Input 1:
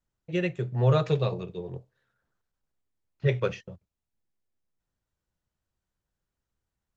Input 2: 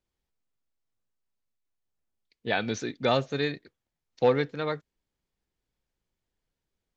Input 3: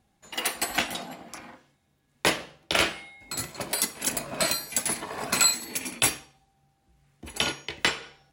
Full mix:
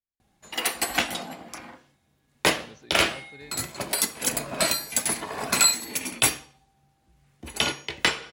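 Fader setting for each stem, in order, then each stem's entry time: muted, −18.5 dB, +2.0 dB; muted, 0.00 s, 0.20 s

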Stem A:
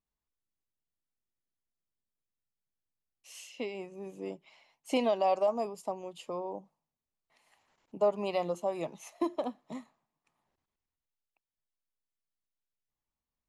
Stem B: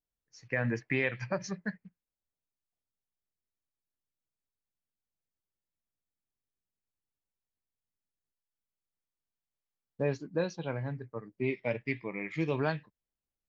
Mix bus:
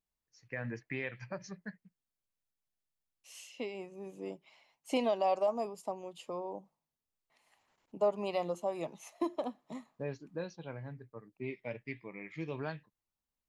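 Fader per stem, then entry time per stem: −2.5, −8.5 decibels; 0.00, 0.00 seconds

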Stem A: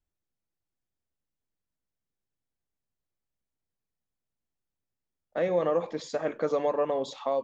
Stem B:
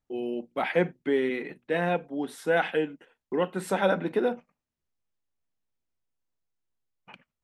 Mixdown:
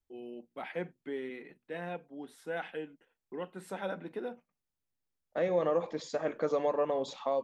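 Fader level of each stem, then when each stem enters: −3.0, −13.0 decibels; 0.00, 0.00 seconds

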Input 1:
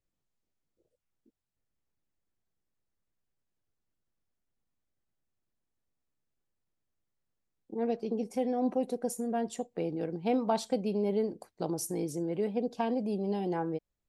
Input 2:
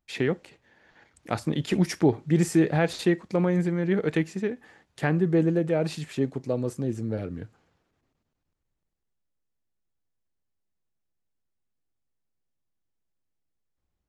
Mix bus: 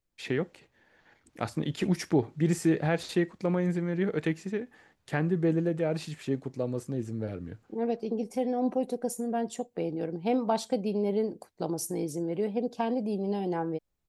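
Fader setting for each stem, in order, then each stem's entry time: +1.5, −4.0 decibels; 0.00, 0.10 seconds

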